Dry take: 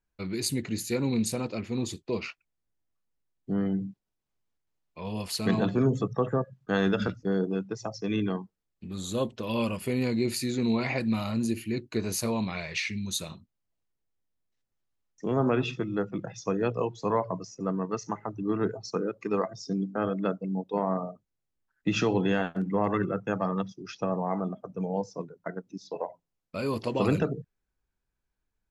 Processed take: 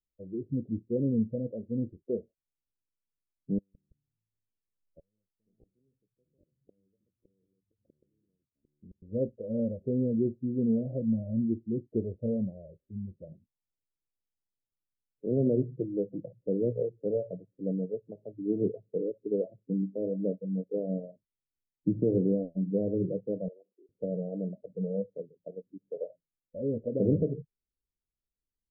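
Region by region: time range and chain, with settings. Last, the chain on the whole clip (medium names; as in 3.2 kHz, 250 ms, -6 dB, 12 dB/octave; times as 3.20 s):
3.58–9.02 s: inverted gate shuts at -31 dBFS, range -40 dB + ever faster or slower copies 166 ms, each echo -5 st, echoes 2, each echo -6 dB
23.48–23.89 s: steep high-pass 370 Hz + compression 5:1, threshold -40 dBFS
whole clip: spectral noise reduction 11 dB; steep low-pass 580 Hz 72 dB/octave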